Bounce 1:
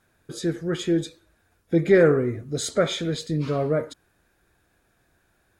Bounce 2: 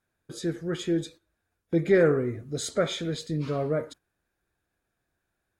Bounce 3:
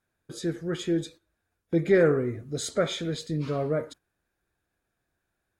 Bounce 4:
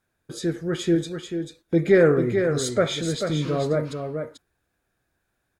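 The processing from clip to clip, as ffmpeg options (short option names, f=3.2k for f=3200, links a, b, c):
-af "agate=range=-10dB:threshold=-42dB:ratio=16:detection=peak,volume=-4dB"
-af anull
-af "aecho=1:1:440:0.473,volume=4dB"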